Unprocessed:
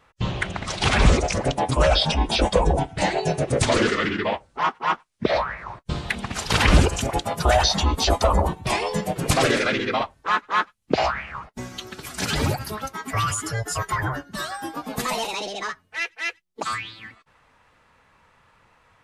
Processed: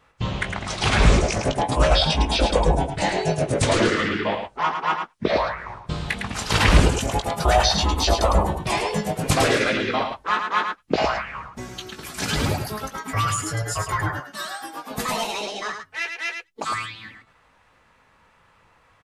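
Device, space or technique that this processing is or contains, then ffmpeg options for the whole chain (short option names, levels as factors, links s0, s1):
slapback doubling: -filter_complex "[0:a]asettb=1/sr,asplit=3[s0][s1][s2];[s0]atrim=end=14.094[s3];[s1]atrim=start=14.09:end=14.91,asetpts=PTS-STARTPTS,afade=t=in:d=0.004:c=qsin,afade=t=out:st=0.816:d=0.004:c=qsin,highpass=f=710:p=1[s4];[s2]atrim=start=14.906[s5];[s3][s4]acrossfade=d=0.004:c1=hsin:c2=qsin[s6];[s6][s5]acrossfade=d=0.004:c1=qsin:c2=hsin,asplit=3[s7][s8][s9];[s8]adelay=19,volume=0.422[s10];[s9]adelay=107,volume=0.501[s11];[s7][s10][s11]amix=inputs=3:normalize=0,volume=0.891"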